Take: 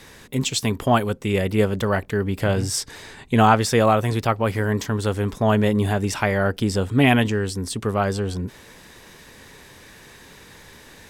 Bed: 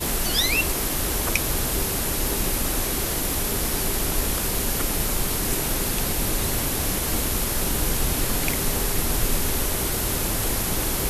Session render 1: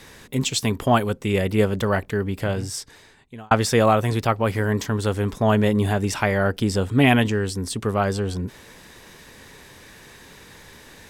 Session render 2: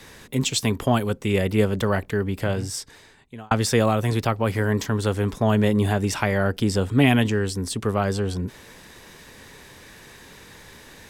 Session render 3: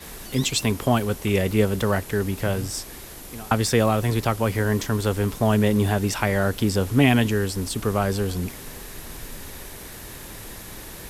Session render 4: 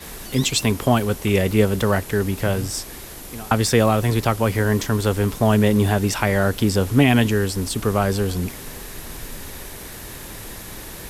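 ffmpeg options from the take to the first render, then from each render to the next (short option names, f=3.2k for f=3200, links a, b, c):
-filter_complex "[0:a]asplit=2[a][b];[a]atrim=end=3.51,asetpts=PTS-STARTPTS,afade=t=out:st=1.99:d=1.52[c];[b]atrim=start=3.51,asetpts=PTS-STARTPTS,afade=t=in:d=0.004:c=hsin[d];[c][d]concat=n=2:v=0:a=1"
-filter_complex "[0:a]acrossover=split=350|3000[a][b][c];[b]acompressor=threshold=-20dB:ratio=6[d];[a][d][c]amix=inputs=3:normalize=0"
-filter_complex "[1:a]volume=-15dB[a];[0:a][a]amix=inputs=2:normalize=0"
-af "volume=3dB,alimiter=limit=-3dB:level=0:latency=1"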